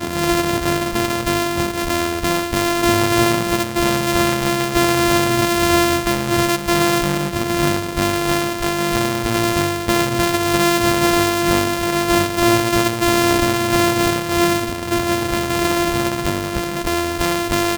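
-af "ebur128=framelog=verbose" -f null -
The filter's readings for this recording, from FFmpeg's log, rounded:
Integrated loudness:
  I:         -17.5 LUFS
  Threshold: -27.5 LUFS
Loudness range:
  LRA:         2.6 LU
  Threshold: -37.2 LUFS
  LRA low:   -18.7 LUFS
  LRA high:  -16.1 LUFS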